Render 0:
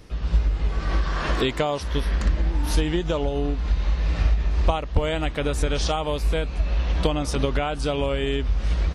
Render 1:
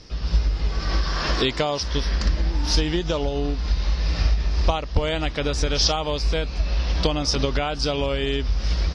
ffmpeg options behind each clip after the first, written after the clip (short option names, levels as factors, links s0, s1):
-af "lowpass=f=5200:t=q:w=5.6"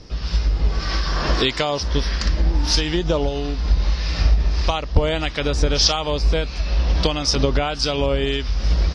-filter_complex "[0:a]acrossover=split=1100[s0][s1];[s0]aeval=exprs='val(0)*(1-0.5/2+0.5/2*cos(2*PI*1.6*n/s))':c=same[s2];[s1]aeval=exprs='val(0)*(1-0.5/2-0.5/2*cos(2*PI*1.6*n/s))':c=same[s3];[s2][s3]amix=inputs=2:normalize=0,volume=1.78"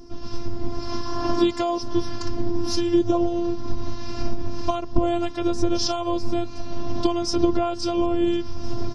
-af "afftfilt=real='hypot(re,im)*cos(PI*b)':imag='0':win_size=512:overlap=0.75,equalizer=f=125:t=o:w=1:g=7,equalizer=f=250:t=o:w=1:g=9,equalizer=f=1000:t=o:w=1:g=4,equalizer=f=2000:t=o:w=1:g=-11,equalizer=f=4000:t=o:w=1:g=-7"